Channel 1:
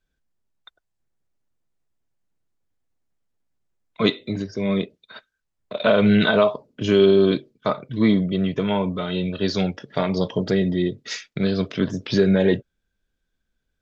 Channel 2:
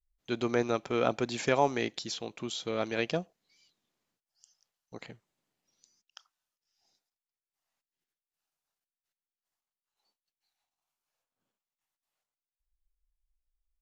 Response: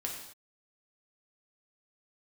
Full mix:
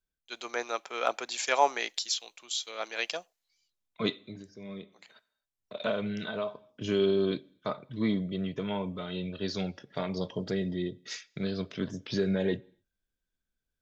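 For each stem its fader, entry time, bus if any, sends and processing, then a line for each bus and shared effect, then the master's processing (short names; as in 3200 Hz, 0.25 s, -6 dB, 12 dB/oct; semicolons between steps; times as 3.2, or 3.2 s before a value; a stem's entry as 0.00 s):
-11.5 dB, 0.00 s, send -23 dB, auto duck -10 dB, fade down 0.35 s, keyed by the second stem
+0.5 dB, 0.00 s, no send, HPF 730 Hz 12 dB/oct; hard clip -16.5 dBFS, distortion -41 dB; three-band expander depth 70%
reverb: on, pre-delay 3 ms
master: high shelf 6100 Hz +7 dB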